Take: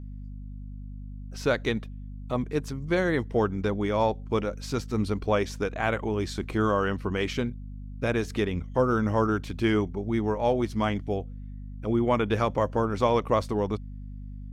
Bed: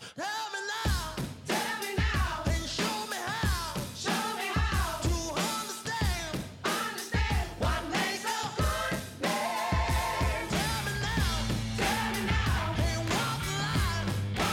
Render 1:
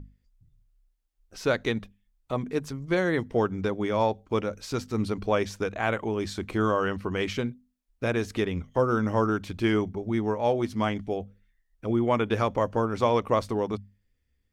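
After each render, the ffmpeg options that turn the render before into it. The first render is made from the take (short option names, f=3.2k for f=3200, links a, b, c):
-af "bandreject=f=50:t=h:w=6,bandreject=f=100:t=h:w=6,bandreject=f=150:t=h:w=6,bandreject=f=200:t=h:w=6,bandreject=f=250:t=h:w=6"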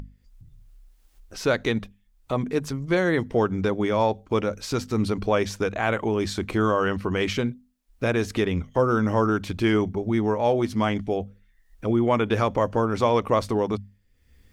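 -filter_complex "[0:a]asplit=2[a][b];[b]alimiter=limit=-22.5dB:level=0:latency=1,volume=-1dB[c];[a][c]amix=inputs=2:normalize=0,acompressor=mode=upward:threshold=-40dB:ratio=2.5"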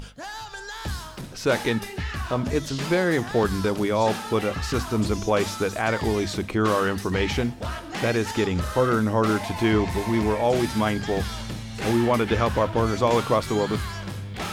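-filter_complex "[1:a]volume=-2dB[a];[0:a][a]amix=inputs=2:normalize=0"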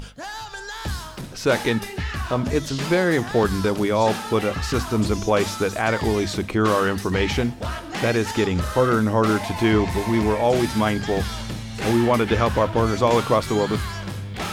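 -af "volume=2.5dB"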